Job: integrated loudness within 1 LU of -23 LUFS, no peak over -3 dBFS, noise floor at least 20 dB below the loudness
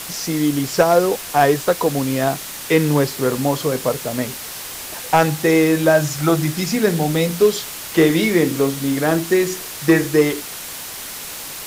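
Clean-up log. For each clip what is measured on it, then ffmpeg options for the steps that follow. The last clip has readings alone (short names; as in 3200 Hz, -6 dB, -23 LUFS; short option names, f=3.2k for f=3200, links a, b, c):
noise floor -32 dBFS; noise floor target -39 dBFS; loudness -18.5 LUFS; peak -4.0 dBFS; loudness target -23.0 LUFS
-> -af "afftdn=nr=7:nf=-32"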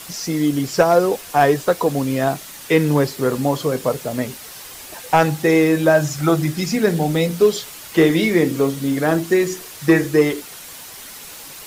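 noise floor -37 dBFS; noise floor target -38 dBFS
-> -af "afftdn=nr=6:nf=-37"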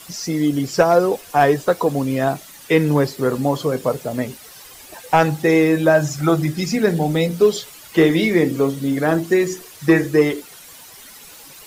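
noise floor -42 dBFS; loudness -18.0 LUFS; peak -4.5 dBFS; loudness target -23.0 LUFS
-> -af "volume=-5dB"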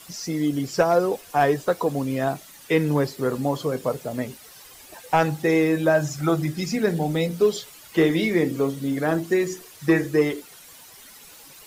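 loudness -23.0 LUFS; peak -9.5 dBFS; noise floor -47 dBFS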